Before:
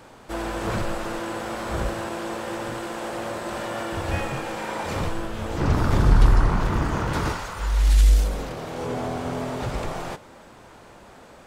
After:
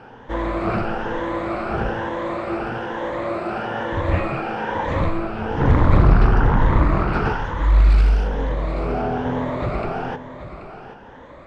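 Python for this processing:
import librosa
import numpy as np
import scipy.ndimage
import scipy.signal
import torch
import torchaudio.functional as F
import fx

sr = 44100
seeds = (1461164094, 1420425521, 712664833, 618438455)

p1 = fx.spec_ripple(x, sr, per_octave=1.1, drift_hz=1.1, depth_db=10)
p2 = scipy.signal.sosfilt(scipy.signal.butter(2, 2300.0, 'lowpass', fs=sr, output='sos'), p1)
p3 = p2 + fx.echo_single(p2, sr, ms=781, db=-12.5, dry=0)
p4 = fx.doppler_dist(p3, sr, depth_ms=0.58)
y = p4 * 10.0 ** (4.0 / 20.0)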